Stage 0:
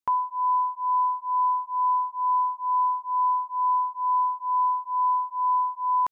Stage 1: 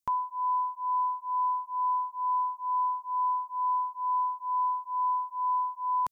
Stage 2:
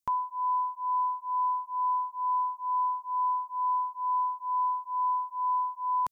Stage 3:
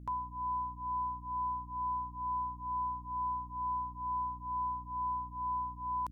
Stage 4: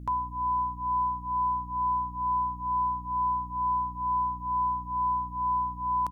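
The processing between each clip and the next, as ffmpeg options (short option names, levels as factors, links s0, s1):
-af "bass=f=250:g=10,treble=f=4000:g=12,volume=0.562"
-af anull
-af "aeval=exprs='val(0)+0.01*(sin(2*PI*60*n/s)+sin(2*PI*2*60*n/s)/2+sin(2*PI*3*60*n/s)/3+sin(2*PI*4*60*n/s)/4+sin(2*PI*5*60*n/s)/5)':c=same,volume=0.422"
-filter_complex "[0:a]asplit=2[s0][s1];[s1]adelay=511,lowpass=f=1100:p=1,volume=0.178,asplit=2[s2][s3];[s3]adelay=511,lowpass=f=1100:p=1,volume=0.53,asplit=2[s4][s5];[s5]adelay=511,lowpass=f=1100:p=1,volume=0.53,asplit=2[s6][s7];[s7]adelay=511,lowpass=f=1100:p=1,volume=0.53,asplit=2[s8][s9];[s9]adelay=511,lowpass=f=1100:p=1,volume=0.53[s10];[s0][s2][s4][s6][s8][s10]amix=inputs=6:normalize=0,volume=2.37"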